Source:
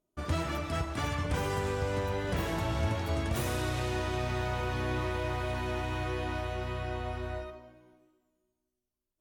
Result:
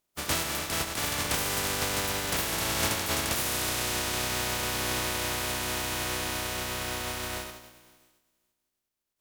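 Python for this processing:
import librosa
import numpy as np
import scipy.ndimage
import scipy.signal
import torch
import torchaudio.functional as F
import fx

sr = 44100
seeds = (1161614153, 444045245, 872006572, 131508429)

y = fx.spec_flatten(x, sr, power=0.32)
y = y * 10.0 ** (2.0 / 20.0)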